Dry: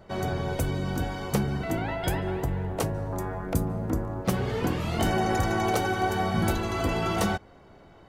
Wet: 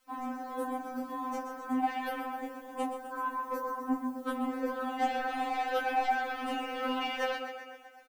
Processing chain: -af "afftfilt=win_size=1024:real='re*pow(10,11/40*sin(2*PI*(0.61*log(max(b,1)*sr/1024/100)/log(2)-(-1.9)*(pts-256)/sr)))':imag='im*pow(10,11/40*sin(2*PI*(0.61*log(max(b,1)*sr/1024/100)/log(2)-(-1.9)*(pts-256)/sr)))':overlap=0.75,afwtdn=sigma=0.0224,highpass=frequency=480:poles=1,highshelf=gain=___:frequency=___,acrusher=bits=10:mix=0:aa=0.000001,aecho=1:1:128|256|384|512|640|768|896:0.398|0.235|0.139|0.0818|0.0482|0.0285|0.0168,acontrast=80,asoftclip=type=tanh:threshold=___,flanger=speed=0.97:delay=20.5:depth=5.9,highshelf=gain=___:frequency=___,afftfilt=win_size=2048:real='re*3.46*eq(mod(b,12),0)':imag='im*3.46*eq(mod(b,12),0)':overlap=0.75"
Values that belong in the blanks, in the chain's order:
-6, 4400, -17dB, 7, 9300